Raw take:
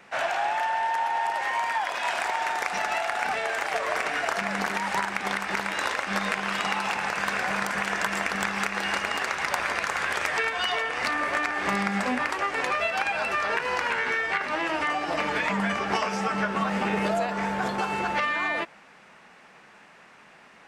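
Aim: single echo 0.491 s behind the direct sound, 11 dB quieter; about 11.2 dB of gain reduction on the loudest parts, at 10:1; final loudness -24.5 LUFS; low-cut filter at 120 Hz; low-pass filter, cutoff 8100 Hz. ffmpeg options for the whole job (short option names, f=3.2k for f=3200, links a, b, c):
-af "highpass=120,lowpass=8.1k,acompressor=threshold=-34dB:ratio=10,aecho=1:1:491:0.282,volume=12dB"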